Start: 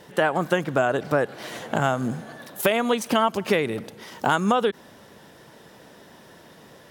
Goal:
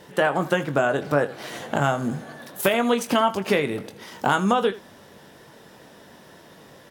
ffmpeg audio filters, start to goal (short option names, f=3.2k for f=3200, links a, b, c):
-af "aecho=1:1:21|80:0.355|0.141"